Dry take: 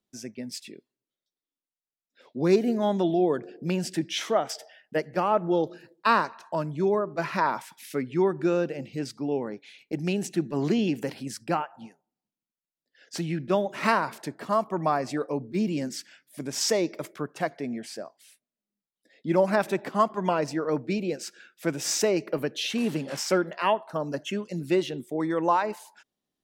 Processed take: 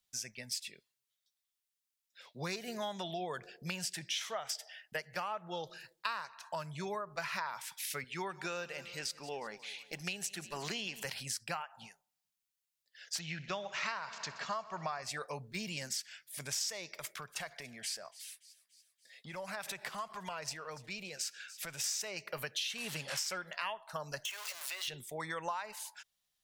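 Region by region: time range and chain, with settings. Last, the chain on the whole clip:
0:08.04–0:11.05: parametric band 120 Hz −15 dB 0.53 octaves + repeating echo 180 ms, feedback 53%, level −19 dB
0:13.19–0:15.03: Butterworth low-pass 7,200 Hz 72 dB per octave + parametric band 120 Hz −6 dB 0.3 octaves + echo machine with several playback heads 62 ms, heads first and second, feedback 68%, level −23 dB
0:16.88–0:21.84: downward compressor 3 to 1, threshold −35 dBFS + delay with a high-pass on its return 287 ms, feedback 56%, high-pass 2,900 Hz, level −19 dB
0:24.25–0:24.88: converter with a step at zero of −35 dBFS + high-pass filter 620 Hz 24 dB per octave + downward compressor 3 to 1, threshold −40 dBFS
whole clip: guitar amp tone stack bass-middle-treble 10-0-10; downward compressor 6 to 1, threshold −43 dBFS; level +7.5 dB

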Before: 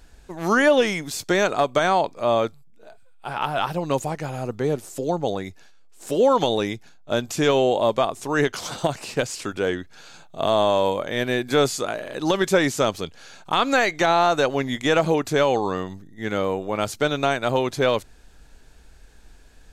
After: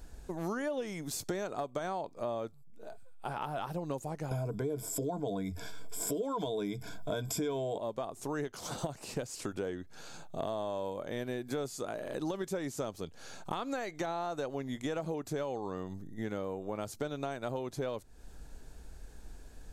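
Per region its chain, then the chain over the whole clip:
0:04.31–0:07.78: EQ curve with evenly spaced ripples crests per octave 1.7, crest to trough 14 dB + envelope flattener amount 50%
whole clip: parametric band 2,600 Hz −8.5 dB 2.4 octaves; downward compressor 5 to 1, threshold −36 dBFS; level +1 dB

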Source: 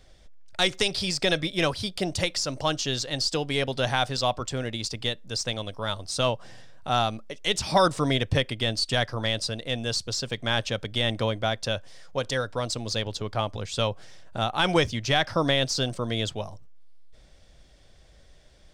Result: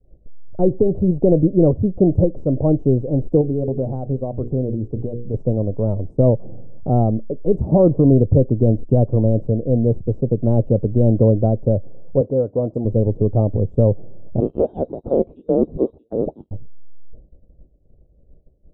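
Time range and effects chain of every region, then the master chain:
0:03.41–0:05.34: mains-hum notches 60/120/180/240/300/360/420/480 Hz + downward compressor 2 to 1, threshold −34 dBFS
0:12.21–0:12.85: high-pass filter 100 Hz + low-shelf EQ 200 Hz −8 dB + all-pass dispersion highs, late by 46 ms, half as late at 2,300 Hz
0:14.40–0:16.51: voice inversion scrambler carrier 3,900 Hz + double-tracking delay 13 ms −13.5 dB
whole clip: inverse Chebyshev low-pass filter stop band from 1,700 Hz, stop band 60 dB; downward expander −44 dBFS; boost into a limiter +20 dB; level −4 dB

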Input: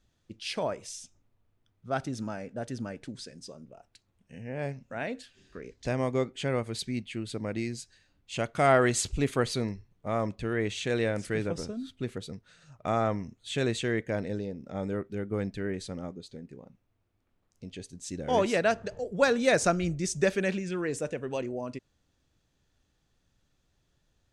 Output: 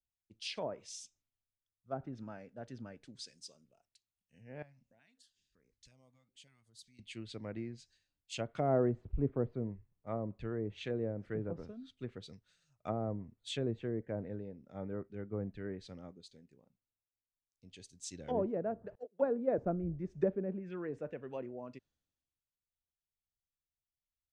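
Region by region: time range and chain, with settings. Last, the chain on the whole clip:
0:04.62–0:06.99: parametric band 380 Hz −6.5 dB 0.51 octaves + downward compressor 3 to 1, threshold −48 dBFS + notch on a step sequencer 5.4 Hz 390–3,200 Hz
0:18.95–0:19.58: high-pass filter 210 Hz + noise gate −34 dBFS, range −22 dB
whole clip: treble cut that deepens with the level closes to 540 Hz, closed at −24.5 dBFS; multiband upward and downward expander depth 70%; level −8 dB

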